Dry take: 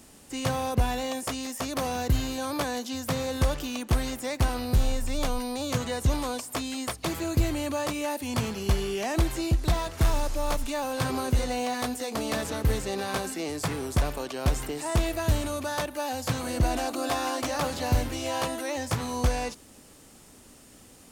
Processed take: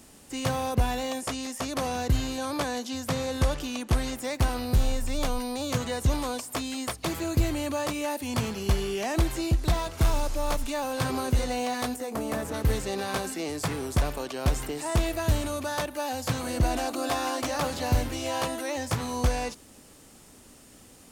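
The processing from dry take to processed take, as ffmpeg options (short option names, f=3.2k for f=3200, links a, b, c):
-filter_complex "[0:a]asettb=1/sr,asplit=3[a][b][c];[a]atrim=end=1.184[d];[b]atrim=start=1.18:end=4.17,asetpts=PTS-STARTPTS,afade=t=in:d=0.004:c=qsin,afade=t=out:st=2.986:d=0.004:c=qsin,lowpass=12k[e];[c]atrim=start=4.166[f];[d][e]acrossfade=d=0.004:c1=hsin:c2=qsin[g];[g][f]acrossfade=d=0.004:c1=qsin:c2=hsin,asettb=1/sr,asplit=3[h][i][j];[h]atrim=end=9.804[k];[i]atrim=start=9.8:end=10.31,asetpts=PTS-STARTPTS,afade=t=in:d=0.004:c=qsin,afade=t=out:st=0.506:d=0.004:c=qsin,bandreject=f=1.8k:w=12[l];[j]atrim=start=10.306[m];[k][l]acrossfade=d=0.004:c1=hsin:c2=qsin[n];[n][m]acrossfade=d=0.004:c1=qsin:c2=hsin,asettb=1/sr,asplit=3[o][p][q];[o]atrim=end=11.964[r];[p]atrim=start=11.96:end=12.54,asetpts=PTS-STARTPTS,afade=t=in:d=0.004:c=qsin,afade=t=out:st=0.576:d=0.004:c=qsin,equalizer=f=4.1k:t=o:w=1.7:g=-10.5[s];[q]atrim=start=12.536[t];[r][s]acrossfade=d=0.004:c1=hsin:c2=qsin[u];[u][t]acrossfade=d=0.004:c1=qsin:c2=hsin"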